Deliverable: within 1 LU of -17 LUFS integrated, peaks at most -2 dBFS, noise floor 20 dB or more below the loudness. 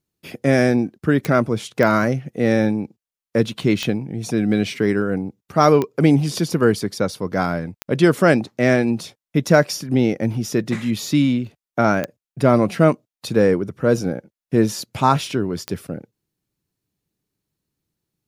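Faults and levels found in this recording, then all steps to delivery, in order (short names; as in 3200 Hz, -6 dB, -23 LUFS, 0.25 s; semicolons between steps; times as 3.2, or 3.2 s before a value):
clicks 7; loudness -19.5 LUFS; peak -1.0 dBFS; loudness target -17.0 LUFS
-> de-click; gain +2.5 dB; limiter -2 dBFS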